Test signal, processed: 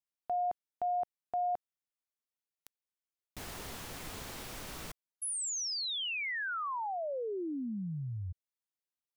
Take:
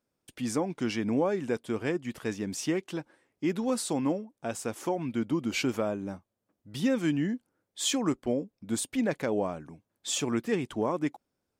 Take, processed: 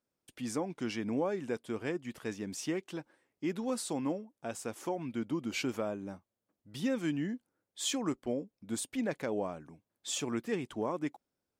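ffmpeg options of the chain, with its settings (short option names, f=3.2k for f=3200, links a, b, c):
-af "lowshelf=f=150:g=-3,volume=-5dB"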